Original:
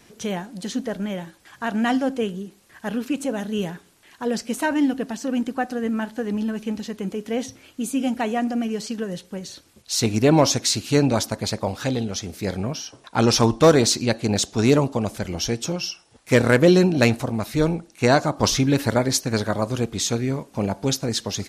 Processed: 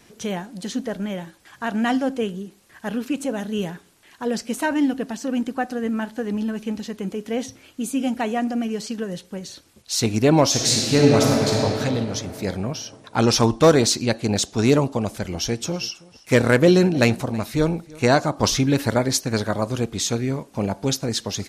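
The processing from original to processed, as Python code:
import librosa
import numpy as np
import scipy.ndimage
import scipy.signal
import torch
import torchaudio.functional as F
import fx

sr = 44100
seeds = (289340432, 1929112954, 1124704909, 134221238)

y = fx.reverb_throw(x, sr, start_s=10.47, length_s=1.1, rt60_s=3.0, drr_db=-3.0)
y = fx.echo_single(y, sr, ms=324, db=-22.5, at=(15.3, 18.14), fade=0.02)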